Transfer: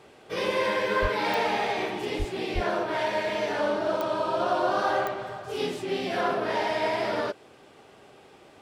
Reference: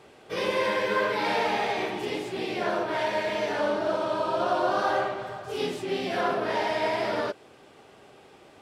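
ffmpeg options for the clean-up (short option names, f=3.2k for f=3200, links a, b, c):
-filter_complex "[0:a]adeclick=t=4,asplit=3[a][b][c];[a]afade=t=out:st=1.01:d=0.02[d];[b]highpass=f=140:w=0.5412,highpass=f=140:w=1.3066,afade=t=in:st=1.01:d=0.02,afade=t=out:st=1.13:d=0.02[e];[c]afade=t=in:st=1.13:d=0.02[f];[d][e][f]amix=inputs=3:normalize=0,asplit=3[g][h][i];[g]afade=t=out:st=2.18:d=0.02[j];[h]highpass=f=140:w=0.5412,highpass=f=140:w=1.3066,afade=t=in:st=2.18:d=0.02,afade=t=out:st=2.3:d=0.02[k];[i]afade=t=in:st=2.3:d=0.02[l];[j][k][l]amix=inputs=3:normalize=0,asplit=3[m][n][o];[m]afade=t=out:st=2.54:d=0.02[p];[n]highpass=f=140:w=0.5412,highpass=f=140:w=1.3066,afade=t=in:st=2.54:d=0.02,afade=t=out:st=2.66:d=0.02[q];[o]afade=t=in:st=2.66:d=0.02[r];[p][q][r]amix=inputs=3:normalize=0"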